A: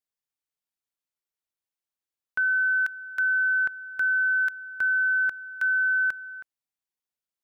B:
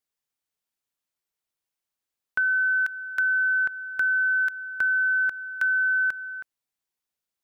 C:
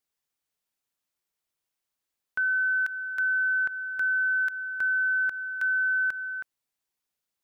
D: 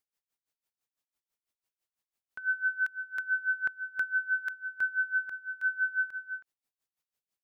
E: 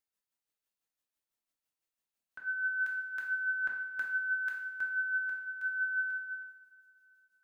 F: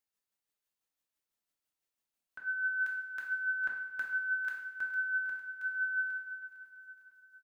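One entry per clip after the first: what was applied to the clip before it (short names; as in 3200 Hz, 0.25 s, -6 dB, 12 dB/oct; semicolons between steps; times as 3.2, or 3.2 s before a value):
compressor, threshold -25 dBFS, peak gain reduction 3.5 dB; gain +4 dB
limiter -23.5 dBFS, peak gain reduction 7.5 dB; gain +1.5 dB
dB-linear tremolo 6 Hz, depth 20 dB
two-slope reverb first 0.66 s, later 2.9 s, from -17 dB, DRR -1.5 dB; gain -5 dB
feedback echo 0.455 s, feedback 52%, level -13 dB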